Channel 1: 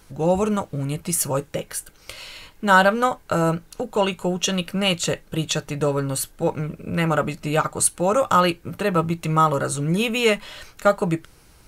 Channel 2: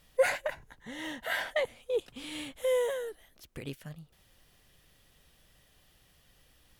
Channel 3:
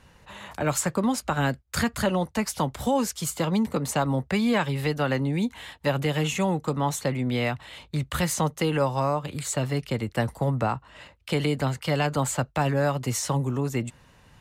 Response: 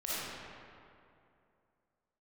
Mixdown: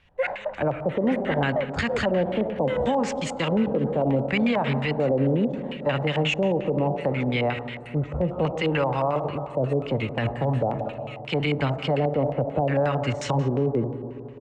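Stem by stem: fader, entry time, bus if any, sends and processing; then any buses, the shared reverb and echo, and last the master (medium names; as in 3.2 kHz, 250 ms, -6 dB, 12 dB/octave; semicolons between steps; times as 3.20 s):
-9.5 dB, 0.00 s, no send, echo send -3.5 dB, pre-emphasis filter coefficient 0.97; compression, threshold -31 dBFS, peak gain reduction 17 dB
-2.0 dB, 0.00 s, send -21 dB, echo send -8.5 dB, none
+1.0 dB, 0.00 s, send -14.5 dB, no echo send, LFO low-pass square 0.71 Hz 510–7800 Hz; three bands expanded up and down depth 40%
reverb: on, RT60 2.6 s, pre-delay 15 ms
echo: feedback delay 849 ms, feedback 51%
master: LFO low-pass square 5.6 Hz 790–2500 Hz; peak limiter -14.5 dBFS, peak gain reduction 11 dB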